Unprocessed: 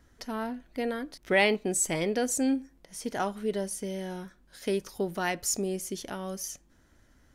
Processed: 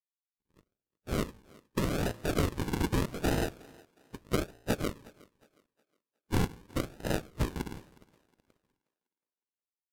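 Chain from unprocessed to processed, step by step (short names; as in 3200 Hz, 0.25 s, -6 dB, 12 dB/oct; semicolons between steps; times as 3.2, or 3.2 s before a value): level-crossing sampler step -28.5 dBFS; gate -29 dBFS, range -50 dB; de-hum 376.4 Hz, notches 13; compressor, threshold -27 dBFS, peak gain reduction 8.5 dB; HPF 44 Hz; AGC gain up to 16 dB; spectral gate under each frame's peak -25 dB weak; resonator 76 Hz, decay 0.53 s, harmonics all, mix 40%; decimation with a swept rate 41×, swing 60% 1.1 Hz; thinning echo 0.269 s, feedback 34%, high-pass 260 Hz, level -23 dB; speed mistake 45 rpm record played at 33 rpm; gain +3.5 dB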